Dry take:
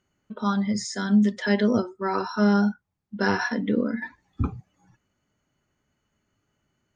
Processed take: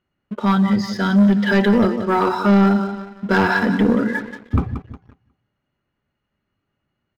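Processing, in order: low-pass 4.2 kHz 24 dB/octave; on a send: feedback delay 175 ms, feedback 38%, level -11.5 dB; on the sum: waveshaping leveller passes 2; tape speed -3%; trim +2 dB

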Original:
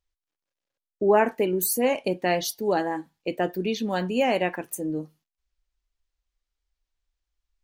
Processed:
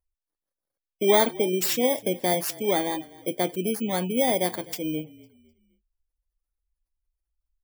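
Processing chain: bit-reversed sample order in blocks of 16 samples; frequency-shifting echo 253 ms, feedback 36%, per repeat -36 Hz, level -21 dB; spectral gate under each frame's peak -30 dB strong

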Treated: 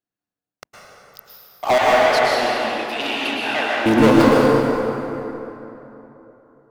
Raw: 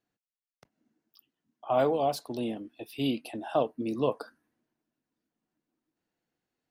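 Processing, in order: waveshaping leveller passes 5; 1.78–3.86 s: band-pass filter 2.2 kHz, Q 1.1; reverberation RT60 3.4 s, pre-delay 102 ms, DRR -5.5 dB; trim +2 dB

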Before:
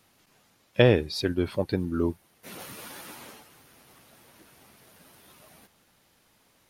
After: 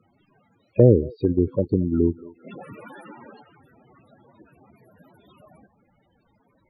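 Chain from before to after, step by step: thinning echo 224 ms, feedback 46%, high-pass 330 Hz, level -19.5 dB; loudest bins only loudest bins 16; low-pass that closes with the level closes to 490 Hz, closed at -24 dBFS; trim +7 dB

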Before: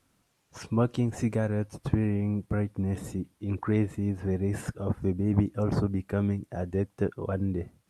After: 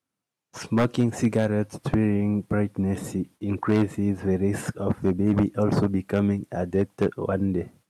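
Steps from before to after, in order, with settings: gate with hold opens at -50 dBFS; high-pass 130 Hz 12 dB/octave; wavefolder -19 dBFS; trim +6.5 dB

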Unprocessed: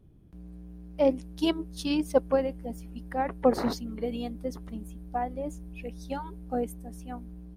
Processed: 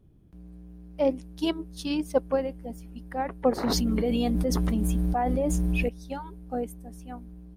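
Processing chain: 3.63–5.89 s: level flattener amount 100%; trim -1 dB

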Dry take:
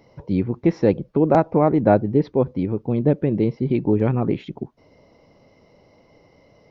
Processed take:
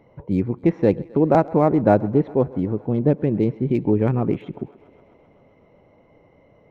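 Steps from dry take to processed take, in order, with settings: local Wiener filter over 9 samples; 2.41–2.98 s: Butterworth band-stop 2.4 kHz, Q 7.7; on a send: thinning echo 131 ms, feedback 80%, high-pass 240 Hz, level -22 dB

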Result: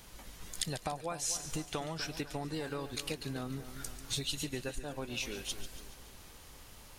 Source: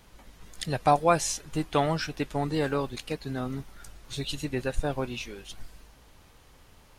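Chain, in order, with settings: compression 12:1, threshold -35 dBFS, peak gain reduction 19.5 dB; treble shelf 3.8 kHz +9 dB; two-band feedback delay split 1.7 kHz, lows 247 ms, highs 142 ms, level -12 dB

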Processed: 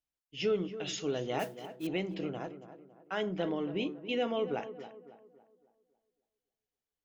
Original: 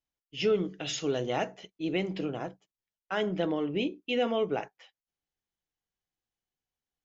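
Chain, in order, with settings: 1.39–1.87 s: modulation noise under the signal 17 dB; tape echo 277 ms, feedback 45%, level -10.5 dB, low-pass 1.5 kHz; trim -4 dB

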